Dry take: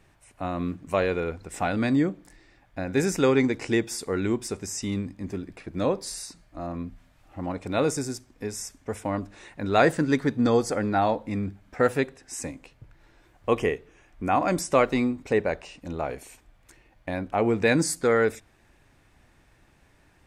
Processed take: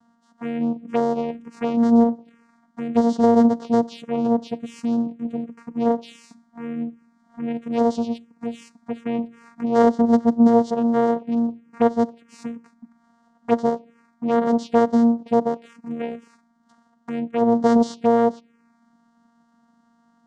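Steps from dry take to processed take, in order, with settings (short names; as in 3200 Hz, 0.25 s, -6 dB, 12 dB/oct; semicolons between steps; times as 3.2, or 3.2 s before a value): tracing distortion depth 0.027 ms; vocoder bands 4, saw 233 Hz; envelope phaser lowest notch 410 Hz, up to 2500 Hz, full sweep at -23 dBFS; gain +6.5 dB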